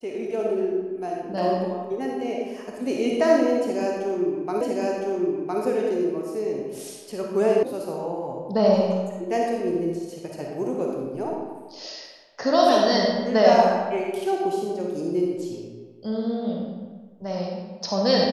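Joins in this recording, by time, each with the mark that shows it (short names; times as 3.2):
4.61 repeat of the last 1.01 s
7.63 sound cut off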